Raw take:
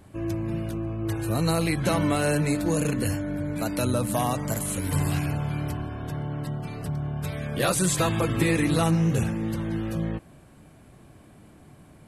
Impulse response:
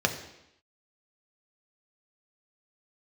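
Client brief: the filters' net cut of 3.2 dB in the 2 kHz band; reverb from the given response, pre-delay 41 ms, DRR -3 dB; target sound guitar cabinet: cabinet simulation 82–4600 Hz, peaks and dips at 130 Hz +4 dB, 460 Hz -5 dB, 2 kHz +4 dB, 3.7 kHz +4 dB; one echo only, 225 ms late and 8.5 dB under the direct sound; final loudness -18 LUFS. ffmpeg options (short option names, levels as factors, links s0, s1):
-filter_complex "[0:a]equalizer=f=2000:t=o:g=-6.5,aecho=1:1:225:0.376,asplit=2[s0][s1];[1:a]atrim=start_sample=2205,adelay=41[s2];[s1][s2]afir=irnorm=-1:irlink=0,volume=0.376[s3];[s0][s3]amix=inputs=2:normalize=0,highpass=82,equalizer=f=130:t=q:w=4:g=4,equalizer=f=460:t=q:w=4:g=-5,equalizer=f=2000:t=q:w=4:g=4,equalizer=f=3700:t=q:w=4:g=4,lowpass=f=4600:w=0.5412,lowpass=f=4600:w=1.3066,volume=1.33"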